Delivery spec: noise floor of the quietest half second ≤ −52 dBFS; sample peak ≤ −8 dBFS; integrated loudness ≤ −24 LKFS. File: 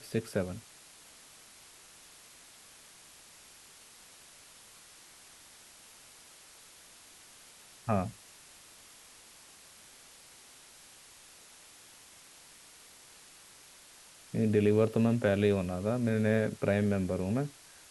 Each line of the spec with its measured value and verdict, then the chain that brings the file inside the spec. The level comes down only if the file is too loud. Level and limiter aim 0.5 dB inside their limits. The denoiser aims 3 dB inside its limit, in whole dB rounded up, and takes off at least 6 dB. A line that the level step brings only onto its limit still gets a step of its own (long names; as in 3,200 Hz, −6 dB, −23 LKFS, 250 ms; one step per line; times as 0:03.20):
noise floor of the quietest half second −56 dBFS: in spec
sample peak −14.0 dBFS: in spec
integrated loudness −30.5 LKFS: in spec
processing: no processing needed